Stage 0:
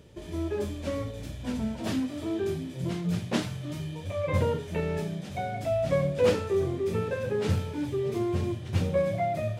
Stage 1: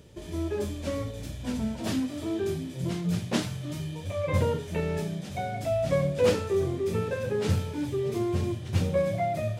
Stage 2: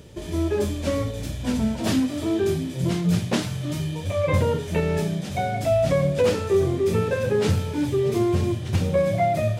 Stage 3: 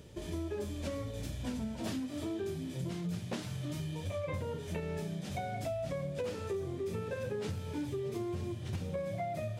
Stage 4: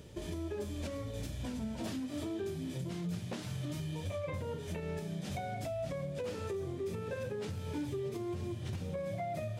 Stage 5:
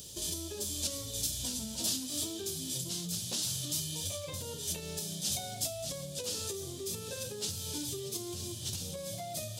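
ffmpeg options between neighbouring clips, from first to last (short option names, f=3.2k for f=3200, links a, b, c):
-af "bass=f=250:g=1,treble=f=4k:g=4"
-af "alimiter=limit=-18dB:level=0:latency=1:release=257,volume=7dB"
-af "acompressor=threshold=-27dB:ratio=6,volume=-7.5dB"
-af "alimiter=level_in=7dB:limit=-24dB:level=0:latency=1:release=183,volume=-7dB,volume=1dB"
-af "aexciter=amount=9.6:drive=7:freq=3.2k,volume=-4dB"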